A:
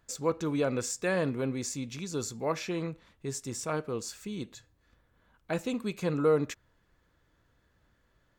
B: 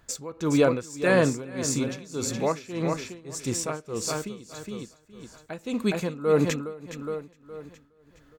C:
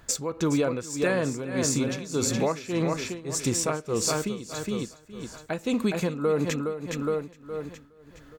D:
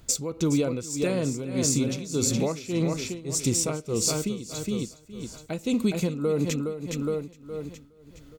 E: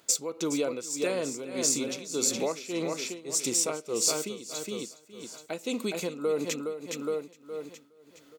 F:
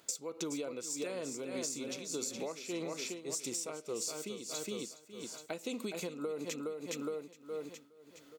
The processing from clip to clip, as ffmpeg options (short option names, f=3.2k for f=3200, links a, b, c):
-af "aecho=1:1:415|830|1245|1660|2075:0.398|0.167|0.0702|0.0295|0.0124,tremolo=f=1.7:d=0.89,volume=9dB"
-af "acompressor=threshold=-28dB:ratio=8,volume=6.5dB"
-af "equalizer=f=1.1k:t=o:w=2.2:g=-10,bandreject=f=1.7k:w=6,volume=3dB"
-af "highpass=390"
-af "acompressor=threshold=-33dB:ratio=12,volume=-2dB"